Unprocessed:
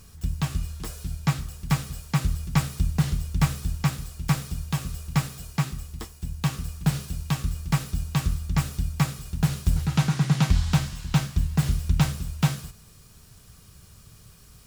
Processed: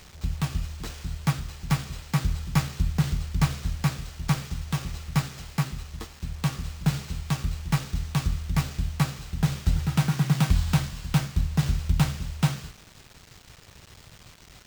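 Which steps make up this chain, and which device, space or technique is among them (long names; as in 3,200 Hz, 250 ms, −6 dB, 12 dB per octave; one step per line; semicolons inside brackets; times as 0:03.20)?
early 8-bit sampler (sample-rate reduction 12,000 Hz, jitter 0%; bit reduction 8 bits)
level −1 dB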